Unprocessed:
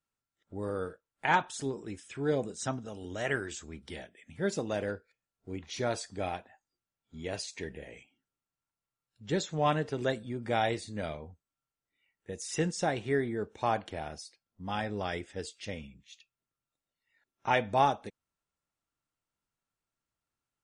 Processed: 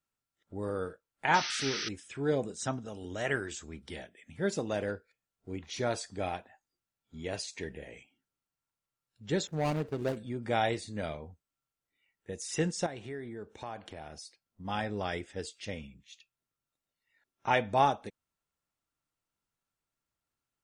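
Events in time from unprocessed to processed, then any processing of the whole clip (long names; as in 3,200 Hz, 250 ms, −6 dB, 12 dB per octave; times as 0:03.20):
0:01.34–0:01.89: sound drawn into the spectrogram noise 1,200–6,200 Hz −36 dBFS
0:09.47–0:10.17: running median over 41 samples
0:12.86–0:14.65: downward compressor 2.5 to 1, threshold −42 dBFS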